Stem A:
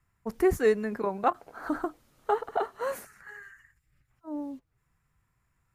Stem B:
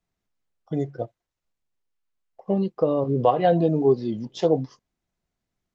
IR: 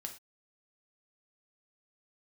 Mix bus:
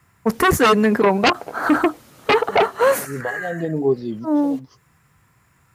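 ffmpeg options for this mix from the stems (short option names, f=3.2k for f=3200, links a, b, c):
-filter_complex "[0:a]aeval=exprs='0.266*sin(PI/2*3.98*val(0)/0.266)':c=same,volume=2dB,asplit=2[a][b];[1:a]volume=0.5dB[c];[b]apad=whole_len=253160[d];[c][d]sidechaincompress=threshold=-41dB:ratio=3:attack=5.4:release=135[e];[a][e]amix=inputs=2:normalize=0,highpass=100"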